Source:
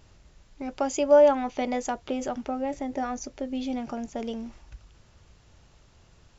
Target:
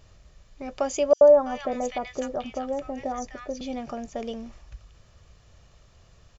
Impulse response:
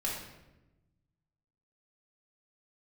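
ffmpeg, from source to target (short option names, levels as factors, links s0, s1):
-filter_complex "[0:a]aecho=1:1:1.7:0.37,asettb=1/sr,asplit=3[s0][s1][s2];[s0]atrim=end=1.134[s3];[s1]atrim=start=1.13:end=3.61,asetpts=PTS-STARTPTS,afade=t=in:d=0.004:c=qsin,afade=t=out:st=2.476:d=0.004:c=qsin,acrossover=split=1400|5300[s4][s5][s6];[s4]adelay=80[s7];[s5]adelay=330[s8];[s7][s8][s6]amix=inputs=3:normalize=0,atrim=end_sample=109368[s9];[s2]atrim=start=3.606[s10];[s3][s9]acrossfade=d=0.004:c1=hsin:c2=qsin[s11];[s11][s10]acrossfade=d=0.004:c1=qsin:c2=hsin"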